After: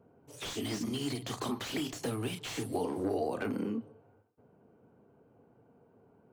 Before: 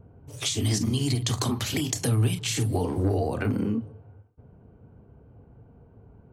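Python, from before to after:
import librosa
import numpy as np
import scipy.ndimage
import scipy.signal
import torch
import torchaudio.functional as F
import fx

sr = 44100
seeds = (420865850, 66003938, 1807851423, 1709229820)

y = scipy.signal.sosfilt(scipy.signal.butter(2, 250.0, 'highpass', fs=sr, output='sos'), x)
y = fx.slew_limit(y, sr, full_power_hz=68.0)
y = y * 10.0 ** (-4.0 / 20.0)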